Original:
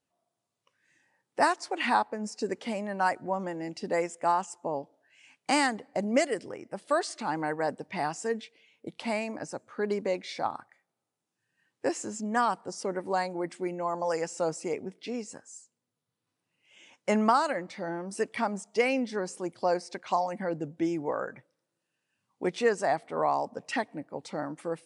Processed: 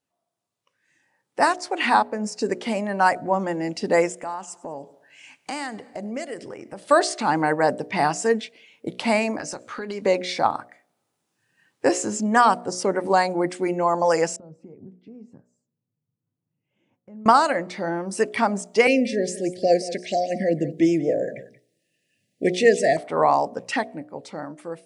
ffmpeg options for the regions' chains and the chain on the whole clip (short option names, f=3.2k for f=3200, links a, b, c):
-filter_complex "[0:a]asettb=1/sr,asplit=3[a][b][c];[a]atrim=end=4.124[d];[b]atrim=start=4.12:end=6.91,asetpts=PTS-STARTPTS,afade=t=in:d=0.004:c=qsin,afade=t=out:st=2.786:d=0.004:c=qsin,acompressor=threshold=-45dB:ratio=2.5:attack=3.2:release=140:knee=1:detection=peak,aecho=1:1:99|198|297|396:0.075|0.039|0.0203|0.0105,atrim=end_sample=123039[e];[c]atrim=start=6.906[f];[d][e]acrossfade=d=0.004:c1=hsin:c2=qsin[g];[g][f]acrossfade=d=0.004:c1=qsin:c2=hsin,asettb=1/sr,asplit=3[h][i][j];[h]atrim=end=9.394[k];[i]atrim=start=9.39:end=10.06,asetpts=PTS-STARTPTS,afade=t=in:d=0.004:c=qsin,afade=t=out:st=0.666:d=0.004:c=qsin,equalizer=f=4k:w=0.42:g=9,acompressor=threshold=-39dB:ratio=6:attack=3.2:release=140:knee=1:detection=peak,asplit=2[l][m];[m]adelay=20,volume=-14dB[n];[l][n]amix=inputs=2:normalize=0,atrim=end_sample=29547[o];[j]atrim=start=10.056[p];[k][o]acrossfade=d=0.004:c1=hsin:c2=qsin[q];[q][p]acrossfade=d=0.004:c1=qsin:c2=hsin,asettb=1/sr,asplit=3[r][s][t];[r]atrim=end=14.364[u];[s]atrim=start=14.36:end=17.26,asetpts=PTS-STARTPTS,afade=t=in:d=0.004:c=qsin,afade=t=out:st=2.896:d=0.004:c=qsin,acompressor=threshold=-41dB:ratio=4:attack=3.2:release=140:knee=1:detection=peak,bandpass=f=130:t=q:w=1.5[v];[t]atrim=start=17.256[w];[u][v]acrossfade=d=0.004:c1=hsin:c2=qsin[x];[x][w]acrossfade=d=0.004:c1=qsin:c2=hsin,asettb=1/sr,asplit=3[y][z][aa];[y]atrim=end=18.874[ab];[z]atrim=start=18.87:end=22.97,asetpts=PTS-STARTPTS,afade=t=in:d=0.004:c=qsin,afade=t=out:st=4.096:d=0.004:c=qsin,asuperstop=centerf=1100:order=20:qfactor=1.1,aecho=1:1:180:0.168,atrim=end_sample=180810[ac];[aa]atrim=start=22.966[ad];[ab][ac]acrossfade=d=0.004:c1=hsin:c2=qsin[ae];[ae][ad]acrossfade=d=0.004:c1=qsin:c2=hsin,bandreject=f=60.21:t=h:w=4,bandreject=f=120.42:t=h:w=4,bandreject=f=180.63:t=h:w=4,bandreject=f=240.84:t=h:w=4,bandreject=f=301.05:t=h:w=4,bandreject=f=361.26:t=h:w=4,bandreject=f=421.47:t=h:w=4,bandreject=f=481.68:t=h:w=4,bandreject=f=541.89:t=h:w=4,bandreject=f=602.1:t=h:w=4,bandreject=f=662.31:t=h:w=4,bandreject=f=722.52:t=h:w=4,dynaudnorm=f=160:g=17:m=10.5dB"